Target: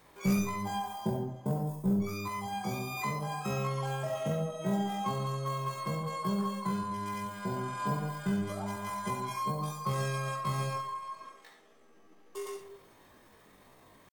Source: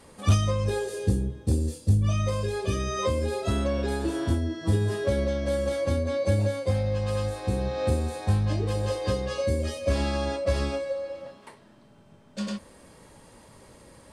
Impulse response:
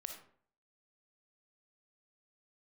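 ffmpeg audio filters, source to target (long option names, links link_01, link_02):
-filter_complex "[0:a]asetrate=85689,aresample=44100,atempo=0.514651,aeval=exprs='0.237*(cos(1*acos(clip(val(0)/0.237,-1,1)))-cos(1*PI/2))+0.00422*(cos(2*acos(clip(val(0)/0.237,-1,1)))-cos(2*PI/2))':channel_layout=same[link_01];[1:a]atrim=start_sample=2205[link_02];[link_01][link_02]afir=irnorm=-1:irlink=0,volume=-4dB"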